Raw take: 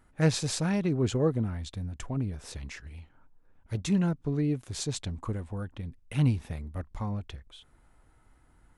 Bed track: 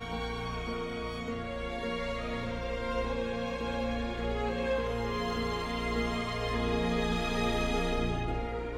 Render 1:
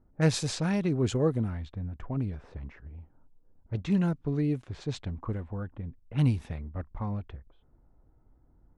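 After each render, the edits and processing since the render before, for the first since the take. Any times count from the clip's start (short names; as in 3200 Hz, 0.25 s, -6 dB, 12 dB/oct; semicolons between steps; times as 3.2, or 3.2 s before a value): low-pass opened by the level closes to 550 Hz, open at -23.5 dBFS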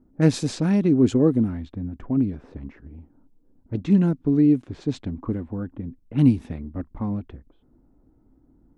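bell 270 Hz +14.5 dB 1.1 oct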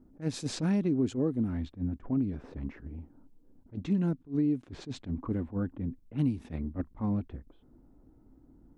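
compressor 6:1, threshold -25 dBFS, peak gain reduction 13.5 dB; attack slew limiter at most 290 dB/s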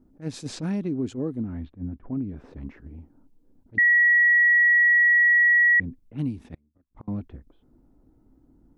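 1.42–2.37 air absorption 320 m; 3.78–5.8 bleep 1920 Hz -14.5 dBFS; 6.54–7.08 flipped gate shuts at -31 dBFS, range -33 dB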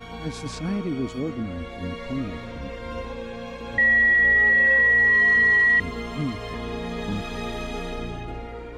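add bed track -1 dB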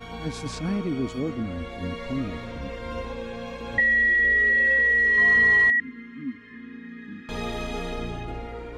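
3.8–5.18 fixed phaser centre 350 Hz, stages 4; 5.7–7.29 double band-pass 680 Hz, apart 2.8 oct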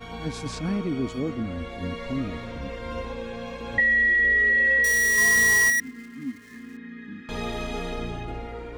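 4.84–6.77 switching dead time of 0.08 ms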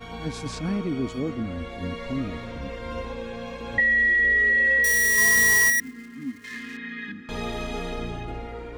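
3.98–5.94 high shelf 10000 Hz +6.5 dB; 6.44–7.12 bell 3100 Hz +14.5 dB 2.9 oct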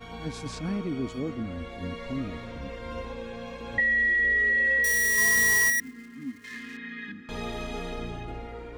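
gain -3.5 dB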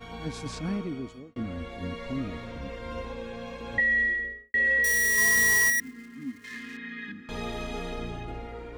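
0.73–1.36 fade out; 3.96–4.54 studio fade out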